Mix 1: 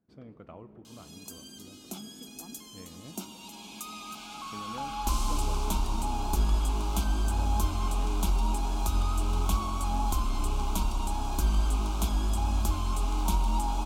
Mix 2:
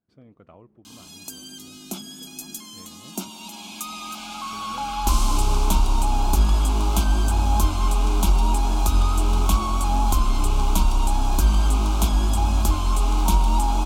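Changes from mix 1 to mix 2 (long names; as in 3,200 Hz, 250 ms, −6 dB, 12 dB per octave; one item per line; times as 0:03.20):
first sound −6.5 dB
second sound +10.5 dB
reverb: off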